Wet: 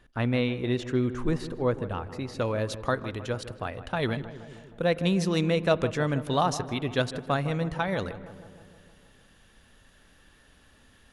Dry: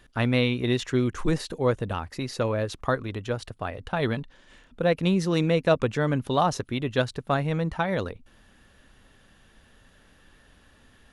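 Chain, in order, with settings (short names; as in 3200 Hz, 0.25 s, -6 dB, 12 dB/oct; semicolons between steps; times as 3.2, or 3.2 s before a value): high shelf 3000 Hz -7.5 dB, from 2.39 s +4.5 dB; darkening echo 0.157 s, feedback 67%, low-pass 1600 Hz, level -13 dB; spring tank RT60 2.2 s, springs 42 ms, chirp 50 ms, DRR 20 dB; gain -2.5 dB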